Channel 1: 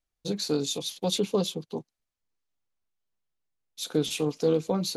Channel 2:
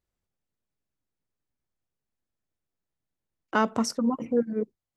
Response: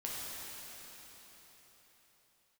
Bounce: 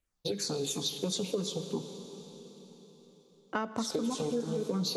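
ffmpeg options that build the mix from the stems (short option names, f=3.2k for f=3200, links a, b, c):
-filter_complex "[0:a]acompressor=threshold=-27dB:ratio=6,asplit=2[a][b];[b]afreqshift=-3[c];[a][c]amix=inputs=2:normalize=1,volume=2dB,asplit=2[d][e];[e]volume=-8.5dB[f];[1:a]volume=-5.5dB,asplit=3[g][h][i];[h]volume=-15.5dB[j];[i]apad=whole_len=219113[k];[d][k]sidechaincompress=threshold=-36dB:ratio=8:attack=16:release=106[l];[2:a]atrim=start_sample=2205[m];[f][j]amix=inputs=2:normalize=0[n];[n][m]afir=irnorm=-1:irlink=0[o];[l][g][o]amix=inputs=3:normalize=0,acompressor=threshold=-28dB:ratio=6"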